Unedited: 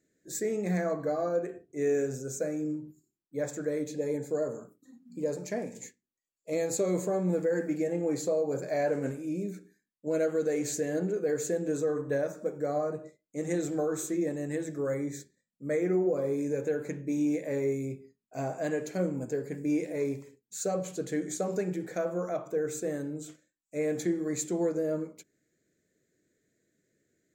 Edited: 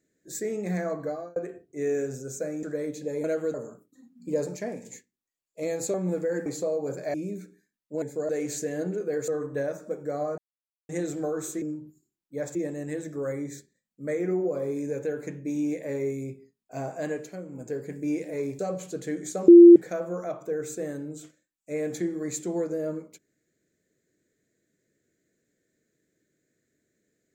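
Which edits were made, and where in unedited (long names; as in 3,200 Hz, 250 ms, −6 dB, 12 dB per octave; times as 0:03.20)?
0:01.05–0:01.36: fade out
0:02.63–0:03.56: move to 0:14.17
0:04.17–0:04.44: swap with 0:10.15–0:10.45
0:05.18–0:05.46: clip gain +4 dB
0:06.84–0:07.15: remove
0:07.67–0:08.11: remove
0:08.79–0:09.27: remove
0:11.44–0:11.83: remove
0:12.93–0:13.44: silence
0:18.74–0:19.37: duck −11 dB, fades 0.30 s
0:20.21–0:20.64: remove
0:21.53–0:21.81: beep over 344 Hz −6 dBFS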